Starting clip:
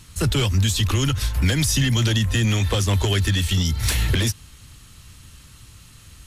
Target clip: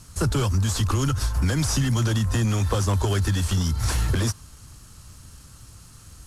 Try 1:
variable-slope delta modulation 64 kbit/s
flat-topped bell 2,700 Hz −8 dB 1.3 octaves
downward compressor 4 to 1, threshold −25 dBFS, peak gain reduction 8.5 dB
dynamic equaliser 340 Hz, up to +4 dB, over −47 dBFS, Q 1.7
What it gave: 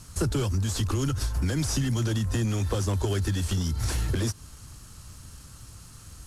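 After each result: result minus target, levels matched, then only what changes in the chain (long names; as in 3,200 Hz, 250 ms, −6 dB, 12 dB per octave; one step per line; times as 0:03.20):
downward compressor: peak gain reduction +5 dB; 1,000 Hz band −3.0 dB
change: downward compressor 4 to 1, threshold −18.5 dBFS, peak gain reduction 4 dB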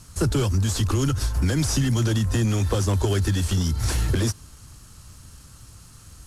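1,000 Hz band −3.0 dB
change: dynamic equaliser 1,100 Hz, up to +4 dB, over −47 dBFS, Q 1.7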